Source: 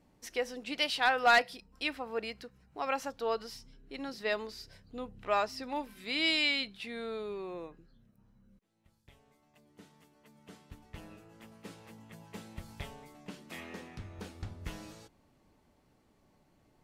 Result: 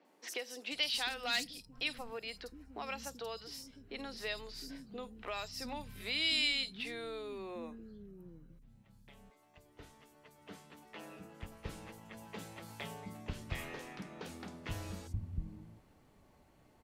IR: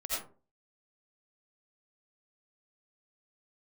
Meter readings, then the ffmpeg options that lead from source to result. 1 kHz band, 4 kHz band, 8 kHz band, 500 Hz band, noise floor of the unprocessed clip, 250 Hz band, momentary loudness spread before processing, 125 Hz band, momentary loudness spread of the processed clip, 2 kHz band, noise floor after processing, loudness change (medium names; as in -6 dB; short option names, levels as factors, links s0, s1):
-12.0 dB, -1.0 dB, +1.5 dB, -8.5 dB, -69 dBFS, -4.5 dB, 23 LU, +3.0 dB, 20 LU, -6.5 dB, -66 dBFS, -6.0 dB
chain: -filter_complex "[0:a]acrossover=split=180|3000[s0][s1][s2];[s1]acompressor=threshold=0.00631:ratio=10[s3];[s0][s3][s2]amix=inputs=3:normalize=0,acrossover=split=270|5100[s4][s5][s6];[s6]adelay=50[s7];[s4]adelay=710[s8];[s8][s5][s7]amix=inputs=3:normalize=0,volume=1.5"